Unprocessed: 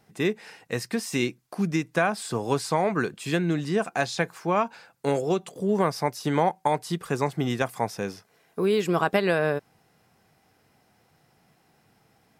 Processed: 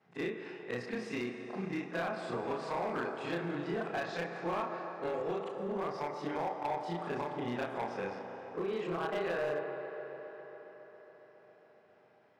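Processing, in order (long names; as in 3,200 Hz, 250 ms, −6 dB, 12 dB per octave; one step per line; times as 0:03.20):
every overlapping window played backwards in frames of 82 ms
downward compressor 12 to 1, threshold −28 dBFS, peak gain reduction 8.5 dB
band-pass filter 110–2,500 Hz
low-shelf EQ 290 Hz −7.5 dB
mains-hum notches 50/100/150/200 Hz
four-comb reverb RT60 3.5 s, combs from 29 ms, DRR 8 dB
hard clipping −29.5 dBFS, distortion −15 dB
on a send: delay with a band-pass on its return 137 ms, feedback 84%, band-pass 740 Hz, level −10 dB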